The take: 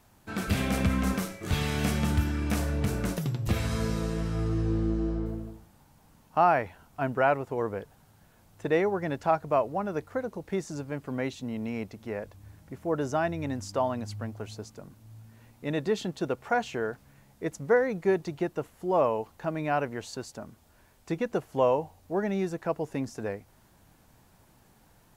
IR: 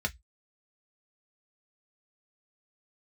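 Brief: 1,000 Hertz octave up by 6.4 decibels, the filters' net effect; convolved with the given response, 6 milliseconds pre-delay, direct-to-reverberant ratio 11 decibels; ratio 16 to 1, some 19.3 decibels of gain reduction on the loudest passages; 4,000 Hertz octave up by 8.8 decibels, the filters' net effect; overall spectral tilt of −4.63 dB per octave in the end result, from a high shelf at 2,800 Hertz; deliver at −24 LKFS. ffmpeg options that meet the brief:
-filter_complex "[0:a]equalizer=frequency=1000:width_type=o:gain=7.5,highshelf=frequency=2800:gain=7,equalizer=frequency=4000:width_type=o:gain=5,acompressor=threshold=-31dB:ratio=16,asplit=2[link_01][link_02];[1:a]atrim=start_sample=2205,adelay=6[link_03];[link_02][link_03]afir=irnorm=-1:irlink=0,volume=-16.5dB[link_04];[link_01][link_04]amix=inputs=2:normalize=0,volume=12.5dB"

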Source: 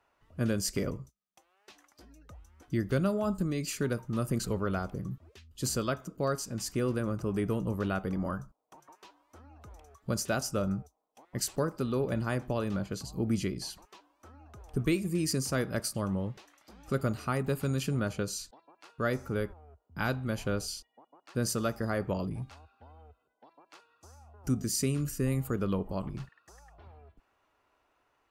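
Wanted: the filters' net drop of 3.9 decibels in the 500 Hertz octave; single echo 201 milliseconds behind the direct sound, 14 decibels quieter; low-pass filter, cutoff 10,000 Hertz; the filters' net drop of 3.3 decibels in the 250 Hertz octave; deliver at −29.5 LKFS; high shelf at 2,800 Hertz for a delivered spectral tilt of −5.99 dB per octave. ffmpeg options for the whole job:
ffmpeg -i in.wav -af "lowpass=10000,equalizer=frequency=250:width_type=o:gain=-3.5,equalizer=frequency=500:width_type=o:gain=-3.5,highshelf=frequency=2800:gain=-7,aecho=1:1:201:0.2,volume=6dB" out.wav

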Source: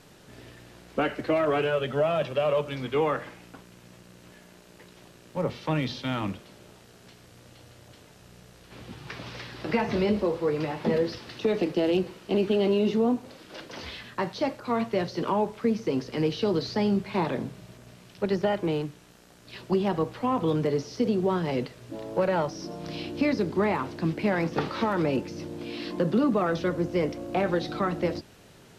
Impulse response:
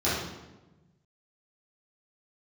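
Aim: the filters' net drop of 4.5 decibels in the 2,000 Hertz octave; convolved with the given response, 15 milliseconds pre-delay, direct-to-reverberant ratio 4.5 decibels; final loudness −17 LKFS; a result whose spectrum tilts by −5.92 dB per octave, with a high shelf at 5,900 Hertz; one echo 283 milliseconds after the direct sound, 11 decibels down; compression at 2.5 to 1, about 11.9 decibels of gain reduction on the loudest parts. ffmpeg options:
-filter_complex "[0:a]equalizer=frequency=2000:width_type=o:gain=-7,highshelf=frequency=5900:gain=8.5,acompressor=threshold=-39dB:ratio=2.5,aecho=1:1:283:0.282,asplit=2[link_01][link_02];[1:a]atrim=start_sample=2205,adelay=15[link_03];[link_02][link_03]afir=irnorm=-1:irlink=0,volume=-17.5dB[link_04];[link_01][link_04]amix=inputs=2:normalize=0,volume=18.5dB"

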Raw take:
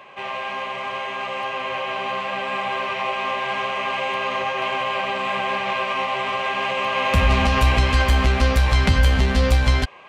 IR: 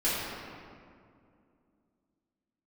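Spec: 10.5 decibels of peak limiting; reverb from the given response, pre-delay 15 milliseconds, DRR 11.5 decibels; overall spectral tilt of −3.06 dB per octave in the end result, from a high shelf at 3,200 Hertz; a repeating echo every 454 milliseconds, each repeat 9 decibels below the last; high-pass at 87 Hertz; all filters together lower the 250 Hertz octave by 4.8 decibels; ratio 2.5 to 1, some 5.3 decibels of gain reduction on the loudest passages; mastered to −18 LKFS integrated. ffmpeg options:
-filter_complex "[0:a]highpass=87,equalizer=frequency=250:width_type=o:gain=-6,highshelf=frequency=3200:gain=8,acompressor=threshold=-23dB:ratio=2.5,alimiter=limit=-17dB:level=0:latency=1,aecho=1:1:454|908|1362|1816:0.355|0.124|0.0435|0.0152,asplit=2[link_01][link_02];[1:a]atrim=start_sample=2205,adelay=15[link_03];[link_02][link_03]afir=irnorm=-1:irlink=0,volume=-23dB[link_04];[link_01][link_04]amix=inputs=2:normalize=0,volume=7dB"

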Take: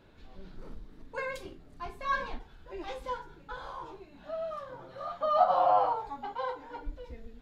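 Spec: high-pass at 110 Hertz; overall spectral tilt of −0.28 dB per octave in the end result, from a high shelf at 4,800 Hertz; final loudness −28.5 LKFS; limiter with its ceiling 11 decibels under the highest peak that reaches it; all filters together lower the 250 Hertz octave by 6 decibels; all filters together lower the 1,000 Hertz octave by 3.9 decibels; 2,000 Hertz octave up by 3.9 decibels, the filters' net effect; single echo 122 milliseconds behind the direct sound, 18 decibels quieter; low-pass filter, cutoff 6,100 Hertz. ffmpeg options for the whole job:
ffmpeg -i in.wav -af "highpass=110,lowpass=6100,equalizer=frequency=250:width_type=o:gain=-8,equalizer=frequency=1000:width_type=o:gain=-7,equalizer=frequency=2000:width_type=o:gain=7,highshelf=frequency=4800:gain=9,alimiter=level_in=2dB:limit=-24dB:level=0:latency=1,volume=-2dB,aecho=1:1:122:0.126,volume=10.5dB" out.wav

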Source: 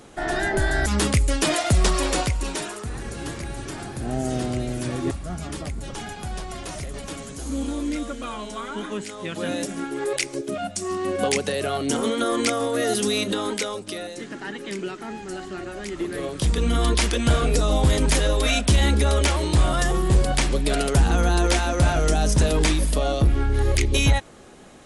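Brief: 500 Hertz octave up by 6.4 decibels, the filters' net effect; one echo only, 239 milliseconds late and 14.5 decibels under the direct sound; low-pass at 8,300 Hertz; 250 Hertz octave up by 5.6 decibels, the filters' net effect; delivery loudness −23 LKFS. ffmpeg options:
ffmpeg -i in.wav -af "lowpass=8300,equalizer=frequency=250:width_type=o:gain=5,equalizer=frequency=500:width_type=o:gain=6.5,aecho=1:1:239:0.188,volume=-2.5dB" out.wav

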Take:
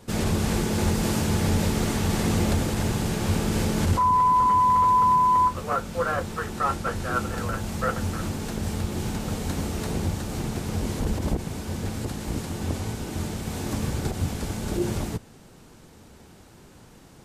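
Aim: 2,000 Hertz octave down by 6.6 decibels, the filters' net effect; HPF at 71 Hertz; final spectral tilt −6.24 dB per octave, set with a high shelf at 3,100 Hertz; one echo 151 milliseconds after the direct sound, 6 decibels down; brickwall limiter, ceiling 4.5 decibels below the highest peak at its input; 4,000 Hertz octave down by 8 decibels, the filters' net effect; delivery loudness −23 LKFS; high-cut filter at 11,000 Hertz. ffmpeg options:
ffmpeg -i in.wav -af "highpass=71,lowpass=11000,equalizer=frequency=2000:width_type=o:gain=-7,highshelf=frequency=3100:gain=-3.5,equalizer=frequency=4000:width_type=o:gain=-5.5,alimiter=limit=-17.5dB:level=0:latency=1,aecho=1:1:151:0.501,volume=5.5dB" out.wav

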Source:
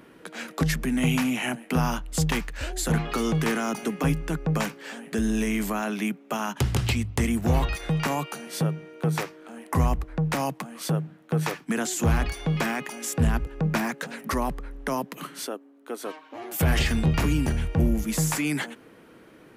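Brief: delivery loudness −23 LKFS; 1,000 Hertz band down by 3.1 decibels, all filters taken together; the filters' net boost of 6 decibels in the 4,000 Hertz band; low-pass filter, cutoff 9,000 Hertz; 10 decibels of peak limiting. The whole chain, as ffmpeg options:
ffmpeg -i in.wav -af "lowpass=9000,equalizer=frequency=1000:width_type=o:gain=-4.5,equalizer=frequency=4000:width_type=o:gain=8.5,volume=7.5dB,alimiter=limit=-13dB:level=0:latency=1" out.wav

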